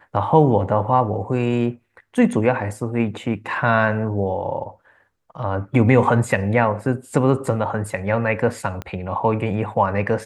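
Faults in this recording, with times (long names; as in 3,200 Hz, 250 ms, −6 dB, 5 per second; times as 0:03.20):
0:08.82: click −16 dBFS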